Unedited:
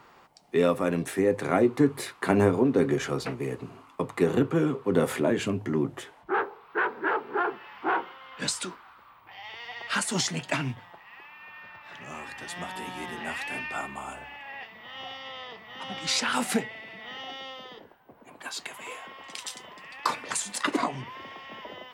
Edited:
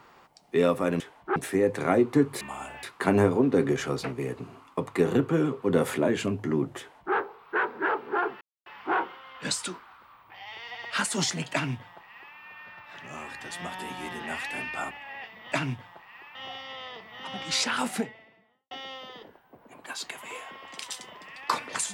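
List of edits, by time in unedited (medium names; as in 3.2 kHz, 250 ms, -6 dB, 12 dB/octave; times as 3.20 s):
6.01–6.37 s: copy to 1.00 s
7.63 s: insert silence 0.25 s
10.50–11.33 s: copy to 14.91 s
13.88–14.30 s: move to 2.05 s
16.15–17.27 s: studio fade out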